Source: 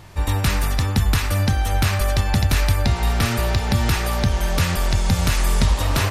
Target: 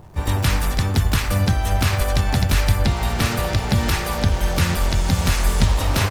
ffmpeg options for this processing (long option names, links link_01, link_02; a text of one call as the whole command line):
ffmpeg -i in.wav -filter_complex "[0:a]asplit=4[link_01][link_02][link_03][link_04];[link_02]asetrate=37084,aresample=44100,atempo=1.18921,volume=-9dB[link_05];[link_03]asetrate=55563,aresample=44100,atempo=0.793701,volume=-12dB[link_06];[link_04]asetrate=88200,aresample=44100,atempo=0.5,volume=-15dB[link_07];[link_01][link_05][link_06][link_07]amix=inputs=4:normalize=0,bandreject=frequency=60:width_type=h:width=6,bandreject=frequency=120:width_type=h:width=6,acrossover=split=1100[link_08][link_09];[link_09]aeval=exprs='sgn(val(0))*max(abs(val(0))-0.00355,0)':channel_layout=same[link_10];[link_08][link_10]amix=inputs=2:normalize=0" out.wav